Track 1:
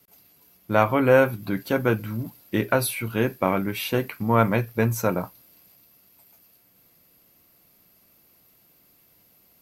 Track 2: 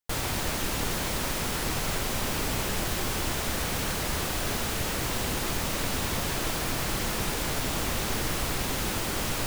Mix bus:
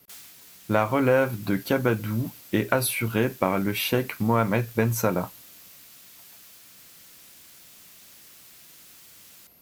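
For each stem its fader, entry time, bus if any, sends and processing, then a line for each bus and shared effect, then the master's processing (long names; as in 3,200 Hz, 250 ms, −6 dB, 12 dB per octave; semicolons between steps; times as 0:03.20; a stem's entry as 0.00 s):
+3.0 dB, 0.00 s, no send, downward compressor 3 to 1, threshold −22 dBFS, peak gain reduction 8 dB
−14.5 dB, 0.00 s, no send, high-pass filter 1,300 Hz 12 dB per octave; high-shelf EQ 2,900 Hz +11 dB; automatic ducking −12 dB, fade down 0.35 s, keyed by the first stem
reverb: not used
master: no processing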